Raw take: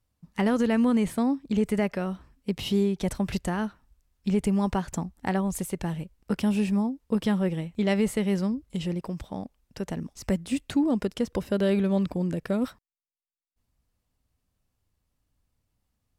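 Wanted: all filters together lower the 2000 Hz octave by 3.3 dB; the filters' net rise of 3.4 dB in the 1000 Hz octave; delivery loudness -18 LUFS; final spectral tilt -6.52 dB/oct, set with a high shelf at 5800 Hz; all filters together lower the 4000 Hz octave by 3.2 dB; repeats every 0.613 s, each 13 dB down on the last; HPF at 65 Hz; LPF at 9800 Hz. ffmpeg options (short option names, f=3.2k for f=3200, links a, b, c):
-af "highpass=65,lowpass=9.8k,equalizer=f=1k:t=o:g=5.5,equalizer=f=2k:t=o:g=-5.5,equalizer=f=4k:t=o:g=-5,highshelf=f=5.8k:g=7.5,aecho=1:1:613|1226|1839:0.224|0.0493|0.0108,volume=9dB"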